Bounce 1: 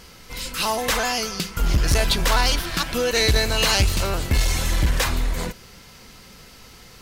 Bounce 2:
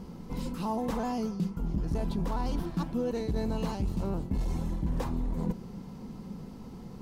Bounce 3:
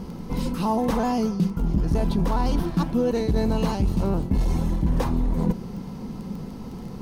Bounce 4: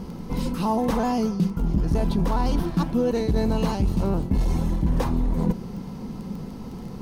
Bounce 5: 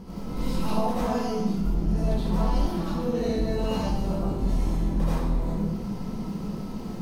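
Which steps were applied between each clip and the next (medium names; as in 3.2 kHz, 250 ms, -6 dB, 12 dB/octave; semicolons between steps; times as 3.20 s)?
FFT filter 100 Hz 0 dB, 190 Hz +13 dB, 630 Hz -3 dB, 900 Hz +1 dB, 1.5 kHz -14 dB, 2.2 kHz -17 dB; reverse; compression 6:1, threshold -28 dBFS, peak gain reduction 16 dB; reverse
band-stop 7.4 kHz, Q 12; crackle 12 per s -43 dBFS; trim +8.5 dB
no audible change
compression, threshold -23 dBFS, peak gain reduction 7 dB; algorithmic reverb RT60 0.98 s, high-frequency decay 0.95×, pre-delay 40 ms, DRR -10 dB; trim -8 dB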